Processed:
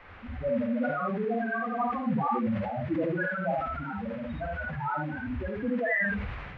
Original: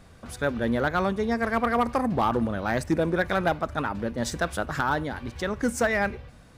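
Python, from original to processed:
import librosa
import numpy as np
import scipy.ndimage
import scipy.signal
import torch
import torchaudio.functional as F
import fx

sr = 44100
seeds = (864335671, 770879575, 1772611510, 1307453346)

p1 = fx.spec_quant(x, sr, step_db=15)
p2 = fx.recorder_agc(p1, sr, target_db=-19.5, rise_db_per_s=22.0, max_gain_db=30)
p3 = fx.filter_lfo_lowpass(p2, sr, shape='saw_up', hz=2.3, low_hz=950.0, high_hz=3600.0, q=1.6)
p4 = fx.echo_feedback(p3, sr, ms=65, feedback_pct=55, wet_db=-13.0)
p5 = fx.spec_topn(p4, sr, count=2)
p6 = fx.dmg_noise_band(p5, sr, seeds[0], low_hz=210.0, high_hz=2200.0, level_db=-52.0)
p7 = fx.peak_eq(p6, sr, hz=490.0, db=-3.5, octaves=2.9)
p8 = p7 + fx.echo_multitap(p7, sr, ms=(46, 53, 81, 85), db=(-11.5, -5.0, -3.0, -11.5), dry=0)
y = fx.sustainer(p8, sr, db_per_s=33.0)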